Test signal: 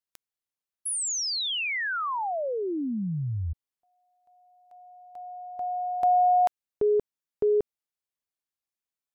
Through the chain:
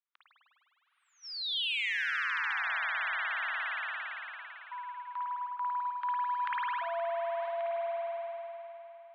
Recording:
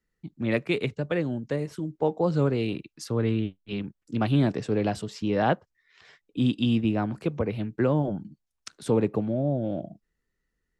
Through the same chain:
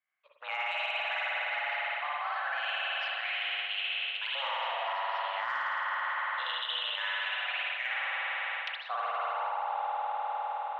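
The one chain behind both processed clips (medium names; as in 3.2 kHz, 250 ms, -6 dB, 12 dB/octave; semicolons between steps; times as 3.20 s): block-companded coder 7-bit; LFO high-pass saw up 0.23 Hz 860–2500 Hz; mistuned SSB +260 Hz 240–3400 Hz; gate -56 dBFS, range -15 dB; spring tank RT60 3.5 s, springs 50 ms, chirp 30 ms, DRR -8.5 dB; in parallel at -4 dB: saturation -15 dBFS; on the sum: peak limiter -15.5 dBFS; reverse; compression 6:1, threshold -36 dBFS; reverse; trim +4.5 dB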